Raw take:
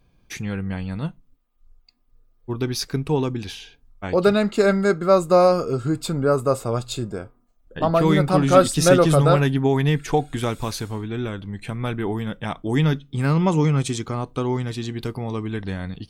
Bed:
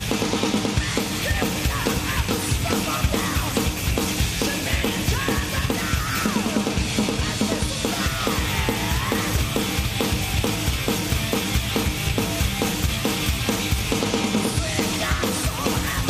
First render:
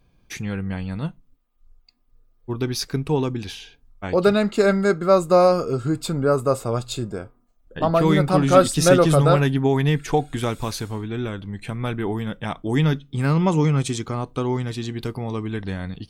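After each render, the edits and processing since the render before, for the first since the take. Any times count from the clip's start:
no processing that can be heard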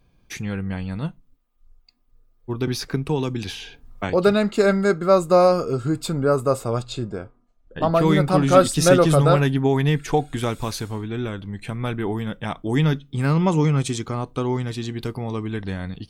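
0:02.67–0:04.10: multiband upward and downward compressor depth 70%
0:06.82–0:07.80: high-frequency loss of the air 73 metres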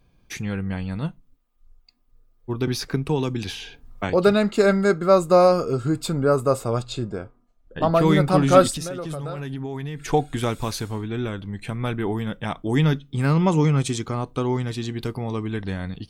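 0:08.70–0:10.08: downward compressor 20 to 1, threshold −26 dBFS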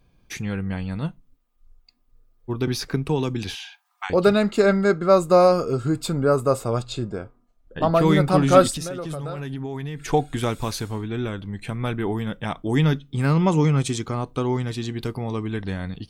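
0:03.55–0:04.10: linear-phase brick-wall high-pass 720 Hz
0:04.60–0:05.10: Bessel low-pass filter 6,100 Hz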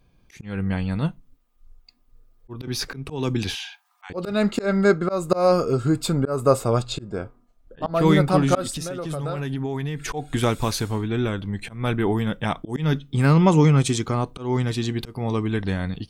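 automatic gain control gain up to 3.5 dB
volume swells 211 ms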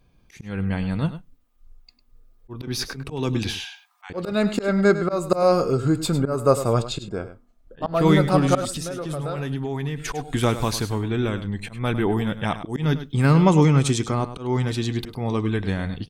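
single-tap delay 102 ms −12.5 dB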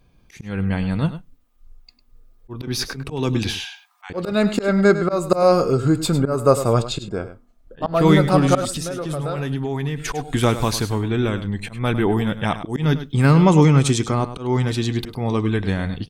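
level +3 dB
brickwall limiter −3 dBFS, peak gain reduction 1.5 dB

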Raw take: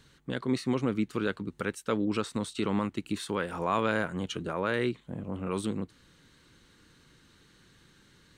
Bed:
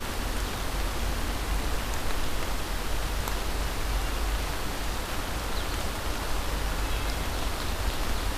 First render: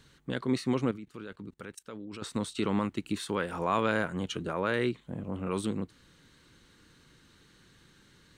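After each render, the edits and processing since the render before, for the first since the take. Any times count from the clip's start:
0:00.91–0:02.22: output level in coarse steps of 21 dB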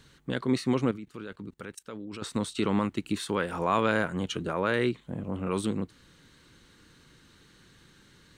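level +2.5 dB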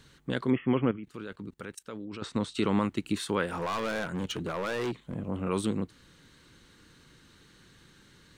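0:00.50–0:01.04: linear-phase brick-wall low-pass 3,400 Hz
0:02.07–0:02.54: high-frequency loss of the air 77 metres
0:03.50–0:05.16: hard clipping −28 dBFS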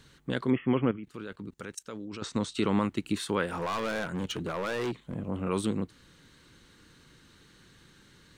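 0:01.54–0:02.51: parametric band 6,400 Hz +8 dB 0.71 octaves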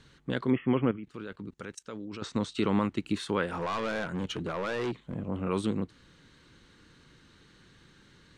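high-frequency loss of the air 56 metres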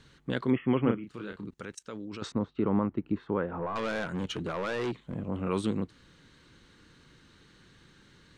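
0:00.82–0:01.45: double-tracking delay 34 ms −5 dB
0:02.32–0:03.76: low-pass filter 1,100 Hz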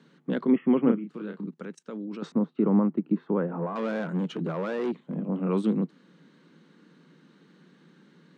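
Chebyshev high-pass filter 160 Hz, order 6
spectral tilt −3 dB per octave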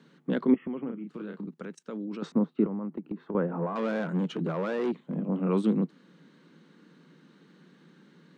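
0:00.54–0:01.78: downward compressor 4 to 1, threshold −33 dBFS
0:02.65–0:03.35: downward compressor 10 to 1, threshold −30 dBFS

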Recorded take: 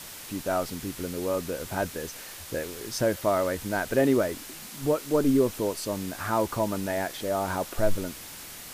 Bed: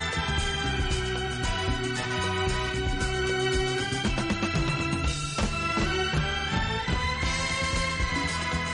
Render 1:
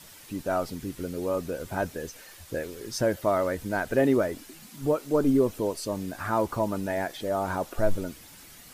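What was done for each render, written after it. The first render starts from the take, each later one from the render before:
broadband denoise 9 dB, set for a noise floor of −42 dBFS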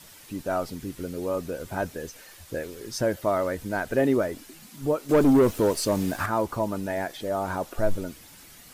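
0:05.09–0:06.26: leveller curve on the samples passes 2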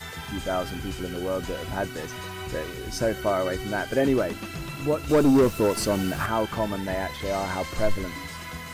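mix in bed −8.5 dB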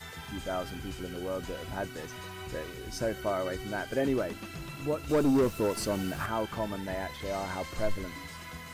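level −6.5 dB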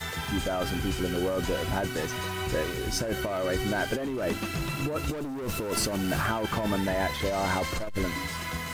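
leveller curve on the samples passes 2
compressor whose output falls as the input rises −28 dBFS, ratio −1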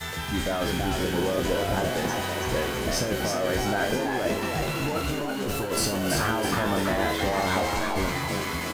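peak hold with a decay on every bin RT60 0.34 s
on a send: echo with shifted repeats 330 ms, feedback 50%, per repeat +130 Hz, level −4 dB

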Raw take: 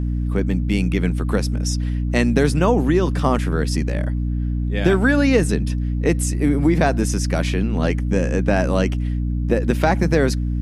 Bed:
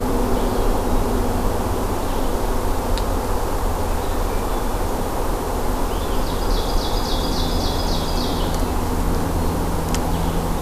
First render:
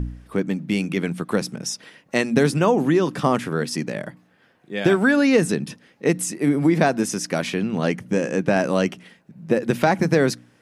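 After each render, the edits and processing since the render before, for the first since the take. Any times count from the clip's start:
hum removal 60 Hz, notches 5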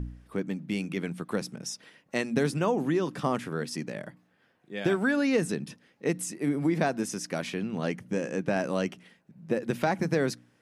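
level −8.5 dB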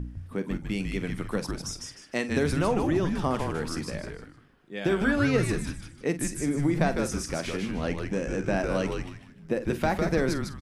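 double-tracking delay 46 ms −13 dB
echo with shifted repeats 153 ms, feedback 32%, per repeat −150 Hz, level −4 dB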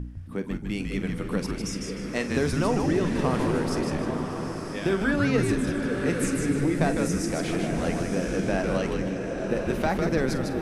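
echo through a band-pass that steps 275 ms, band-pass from 210 Hz, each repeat 0.7 octaves, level −3 dB
slow-attack reverb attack 1,020 ms, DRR 5 dB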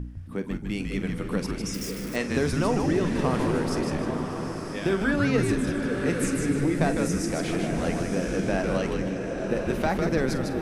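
0:01.74–0:02.16: spike at every zero crossing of −31 dBFS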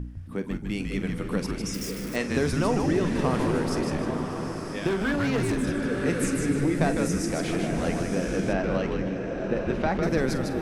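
0:04.87–0:05.63: gain into a clipping stage and back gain 21.5 dB
0:08.53–0:10.03: high-frequency loss of the air 120 metres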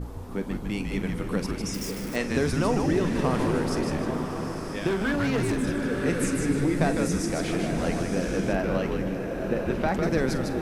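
mix in bed −23 dB

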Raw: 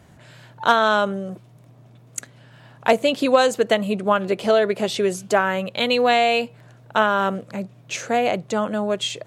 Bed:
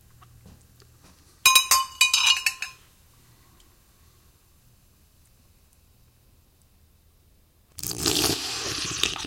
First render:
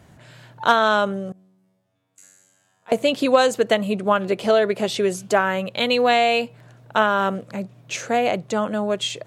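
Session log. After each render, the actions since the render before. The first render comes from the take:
0:01.32–0:02.92: tuned comb filter 94 Hz, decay 1.3 s, mix 100%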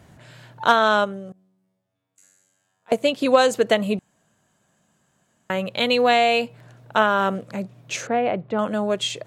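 0:01.04–0:03.26: expander for the loud parts, over −28 dBFS
0:03.99–0:05.50: fill with room tone
0:08.07–0:08.59: high-frequency loss of the air 440 metres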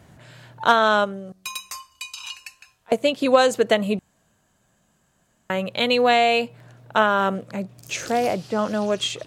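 mix in bed −16 dB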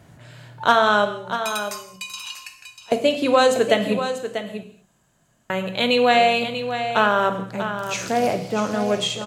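single-tap delay 641 ms −9.5 dB
reverb whose tail is shaped and stops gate 260 ms falling, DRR 6.5 dB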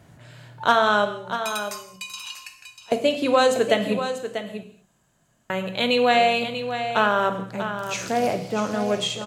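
level −2 dB

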